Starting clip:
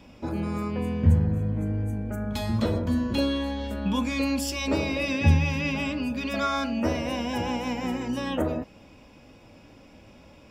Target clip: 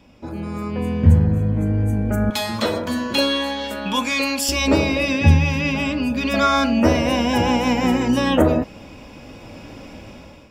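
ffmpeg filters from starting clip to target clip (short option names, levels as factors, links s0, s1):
-filter_complex "[0:a]asettb=1/sr,asplit=3[s0][s1][s2];[s0]atrim=end=2.304[s3];[s1]atrim=start=2.3:end=4.49,asetpts=PTS-STARTPTS,afade=t=in:d=0.004:c=qsin,afade=t=out:st=2.186:d=0.004:c=qsin,highpass=f=930:p=1[s4];[s2]atrim=start=4.486[s5];[s3][s4]acrossfade=d=0.004:c1=hsin:c2=qsin[s6];[s6][s5]acrossfade=d=0.004:c1=qsin:c2=hsin,dynaudnorm=f=290:g=5:m=5.31,volume=0.891"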